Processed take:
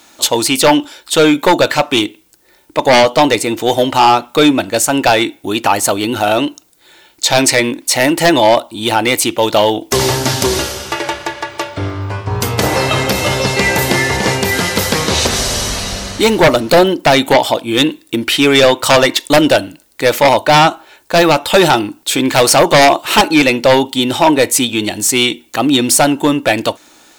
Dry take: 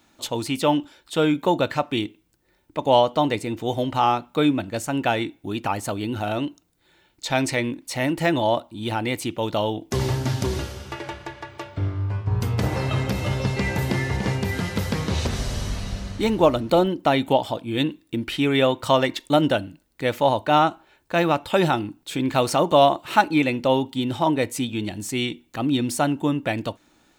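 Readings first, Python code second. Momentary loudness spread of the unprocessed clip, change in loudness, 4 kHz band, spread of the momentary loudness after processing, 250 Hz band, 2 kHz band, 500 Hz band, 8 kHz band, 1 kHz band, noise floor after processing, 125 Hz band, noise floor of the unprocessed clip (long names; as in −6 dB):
10 LU, +11.0 dB, +15.0 dB, 9 LU, +9.0 dB, +14.0 dB, +10.5 dB, +20.0 dB, +10.0 dB, −49 dBFS, +4.5 dB, −63 dBFS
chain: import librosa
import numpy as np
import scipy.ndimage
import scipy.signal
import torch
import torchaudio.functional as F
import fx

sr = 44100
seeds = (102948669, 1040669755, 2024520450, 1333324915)

y = fx.bass_treble(x, sr, bass_db=-12, treble_db=6)
y = fx.fold_sine(y, sr, drive_db=12, ceiling_db=-2.0)
y = y * librosa.db_to_amplitude(-1.0)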